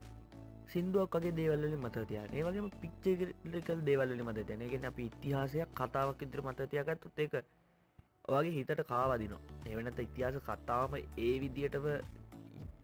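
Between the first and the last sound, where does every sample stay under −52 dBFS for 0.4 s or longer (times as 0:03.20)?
0:07.43–0:07.99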